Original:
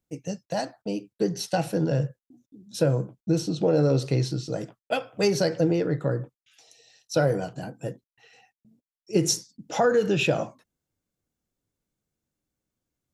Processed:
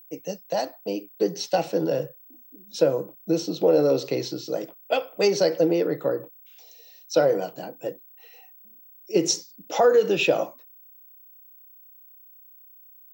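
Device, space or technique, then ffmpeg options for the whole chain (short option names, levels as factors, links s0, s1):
old television with a line whistle: -af "highpass=f=210:w=0.5412,highpass=f=210:w=1.3066,equalizer=f=230:t=q:w=4:g=-9,equalizer=f=520:t=q:w=4:g=3,equalizer=f=1600:t=q:w=4:g=-6,lowpass=f=6600:w=0.5412,lowpass=f=6600:w=1.3066,aeval=exprs='val(0)+0.00316*sin(2*PI*15734*n/s)':c=same,volume=1.33"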